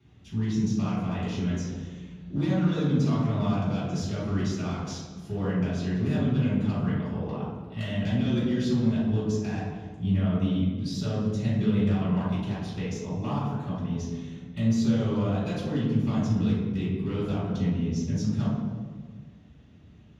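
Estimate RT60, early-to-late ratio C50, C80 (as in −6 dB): 1.6 s, −1.5 dB, 2.0 dB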